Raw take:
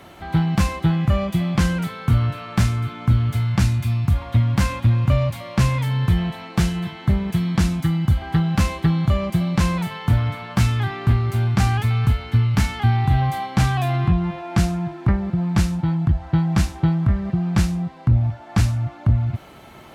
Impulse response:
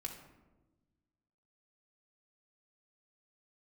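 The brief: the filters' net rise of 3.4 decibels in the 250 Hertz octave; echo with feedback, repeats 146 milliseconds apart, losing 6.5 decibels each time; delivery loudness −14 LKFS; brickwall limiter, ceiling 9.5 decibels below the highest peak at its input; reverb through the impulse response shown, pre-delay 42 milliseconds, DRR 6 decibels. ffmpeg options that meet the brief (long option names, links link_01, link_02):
-filter_complex "[0:a]equalizer=frequency=250:width_type=o:gain=6,alimiter=limit=-14.5dB:level=0:latency=1,aecho=1:1:146|292|438|584|730|876:0.473|0.222|0.105|0.0491|0.0231|0.0109,asplit=2[link_01][link_02];[1:a]atrim=start_sample=2205,adelay=42[link_03];[link_02][link_03]afir=irnorm=-1:irlink=0,volume=-4dB[link_04];[link_01][link_04]amix=inputs=2:normalize=0,volume=5.5dB"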